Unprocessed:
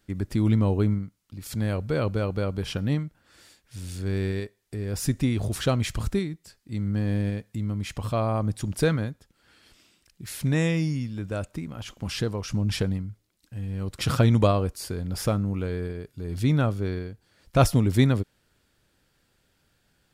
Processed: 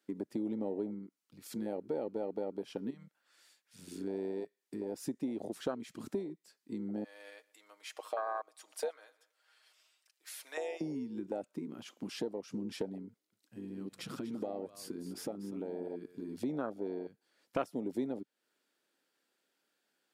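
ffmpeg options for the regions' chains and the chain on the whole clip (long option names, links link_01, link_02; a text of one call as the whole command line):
ffmpeg -i in.wav -filter_complex "[0:a]asettb=1/sr,asplit=3[link_01][link_02][link_03];[link_01]atrim=end=2.904[link_04];[link_02]atrim=start=2.9:end=3.79,asetpts=PTS-STARTPTS,afade=type=in:duration=0.004:curve=qsin,afade=type=out:start_time=0.886:duration=0.004:curve=qsin,equalizer=frequency=280:width_type=o:width=2:gain=-11.5,acompressor=threshold=-33dB:ratio=5:attack=3.2:release=140:knee=1:detection=peak[link_05];[link_03]atrim=start=3.786[link_06];[link_04][link_05]acrossfade=duration=0.004:curve1=hsin:curve2=qsin[link_07];[link_07][link_06]acrossfade=duration=0.004:curve1=qsin:curve2=hsin,asettb=1/sr,asplit=3[link_08][link_09][link_10];[link_08]atrim=end=7.044[link_11];[link_09]atrim=start=7.04:end=10.81,asetpts=PTS-STARTPTS,afade=type=in:duration=0.004:curve=qsin,afade=type=out:start_time=3.766:duration=0.004:curve=qsin,highpass=frequency=590:width=0.5412,highpass=frequency=590:width=1.3066,aecho=1:1:6.4:0.54,atrim=end_sample=166257,aecho=1:1:118|236|354:0.0668|0.0267|0.0107,atrim=end_sample=166257[link_12];[link_10]atrim=start=10.806[link_13];[link_11][link_12]acrossfade=duration=0.004:curve1=hsin:curve2=qsin[link_14];[link_14][link_13]acrossfade=duration=0.004:curve1=qsin:curve2=hsin,asettb=1/sr,asplit=3[link_15][link_16][link_17];[link_15]atrim=end=13.084[link_18];[link_16]atrim=start=13.08:end=16.43,asetpts=PTS-STARTPTS,afade=type=in:duration=0.004:curve=qsin,afade=type=out:start_time=3.346:duration=0.004:curve=qsin,acompressor=threshold=-31dB:ratio=3:attack=3.2:release=140:knee=1:detection=peak,aecho=1:1:243:0.299,atrim=end_sample=147735[link_19];[link_17]atrim=start=16.426[link_20];[link_18][link_19]acrossfade=duration=0.004:curve1=hsin:curve2=qsin[link_21];[link_21][link_20]acrossfade=duration=0.004:curve1=qsin:curve2=hsin,afwtdn=0.0447,highpass=frequency=260:width=0.5412,highpass=frequency=260:width=1.3066,acompressor=threshold=-44dB:ratio=3,volume=6dB" out.wav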